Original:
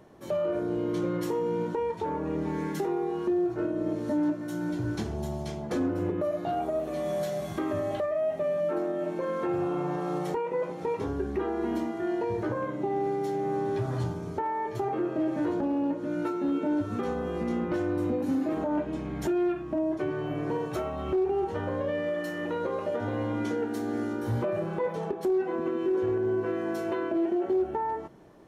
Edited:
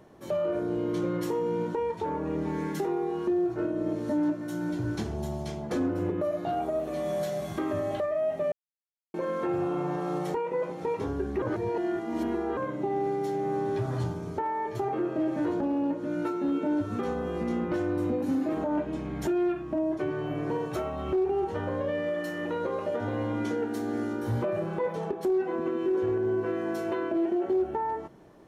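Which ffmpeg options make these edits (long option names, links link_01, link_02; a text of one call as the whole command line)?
ffmpeg -i in.wav -filter_complex "[0:a]asplit=5[link_01][link_02][link_03][link_04][link_05];[link_01]atrim=end=8.52,asetpts=PTS-STARTPTS,afade=type=out:start_time=8.516:duration=0.004:curve=hsin[link_06];[link_02]atrim=start=8.52:end=9.14,asetpts=PTS-STARTPTS,volume=0[link_07];[link_03]atrim=start=9.14:end=11.422,asetpts=PTS-STARTPTS,afade=type=in:duration=0.004:curve=hsin[link_08];[link_04]atrim=start=11.418:end=12.572,asetpts=PTS-STARTPTS,areverse[link_09];[link_05]atrim=start=12.568[link_10];[link_06][link_07][link_08]concat=n=3:v=0:a=1[link_11];[link_11][link_09]acrossfade=duration=0.004:curve1=hsin:curve2=hsin[link_12];[link_12][link_10]acrossfade=duration=0.004:curve1=hsin:curve2=hsin" out.wav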